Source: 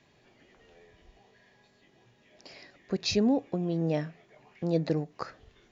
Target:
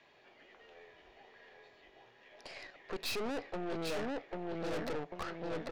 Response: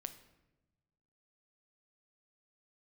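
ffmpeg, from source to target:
-filter_complex "[0:a]acrossover=split=380 4400:gain=0.158 1 0.158[a][b][c];[a][b][c]amix=inputs=3:normalize=0,asplit=2[d][e];[e]adelay=793,lowpass=f=4k:p=1,volume=-4.5dB,asplit=2[f][g];[g]adelay=793,lowpass=f=4k:p=1,volume=0.38,asplit=2[h][i];[i]adelay=793,lowpass=f=4k:p=1,volume=0.38,asplit=2[j][k];[k]adelay=793,lowpass=f=4k:p=1,volume=0.38,asplit=2[l][m];[m]adelay=793,lowpass=f=4k:p=1,volume=0.38[n];[d][f][h][j][l][n]amix=inputs=6:normalize=0,aeval=exprs='(tanh(141*val(0)+0.75)-tanh(0.75))/141':c=same,volume=7.5dB"

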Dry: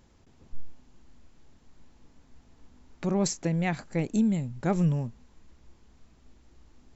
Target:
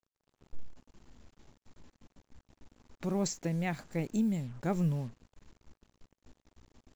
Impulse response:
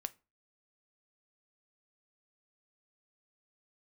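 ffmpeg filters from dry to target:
-af "acrusher=bits=7:mix=0:aa=0.5,volume=-5.5dB"

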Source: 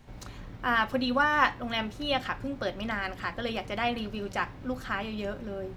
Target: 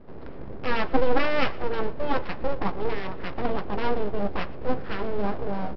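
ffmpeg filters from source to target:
-filter_complex "[0:a]lowpass=1.4k,equalizer=f=240:t=o:w=2.2:g=13.5,aresample=11025,aeval=exprs='abs(val(0))':c=same,aresample=44100,asplit=2[a][b];[b]adelay=15,volume=-13.5dB[c];[a][c]amix=inputs=2:normalize=0,aecho=1:1:117|234|351|468|585:0.0841|0.0496|0.0293|0.0173|0.0102"

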